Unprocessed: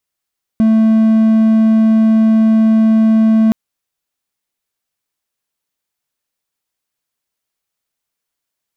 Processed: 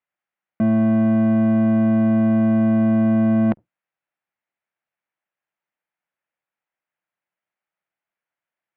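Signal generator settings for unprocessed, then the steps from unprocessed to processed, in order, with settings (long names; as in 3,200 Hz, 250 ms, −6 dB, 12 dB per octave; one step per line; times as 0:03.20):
tone triangle 221 Hz −5 dBFS 2.92 s
sub-octave generator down 1 octave, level −4 dB
loudspeaker in its box 220–2,300 Hz, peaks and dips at 260 Hz −10 dB, 420 Hz −10 dB, 1,100 Hz −4 dB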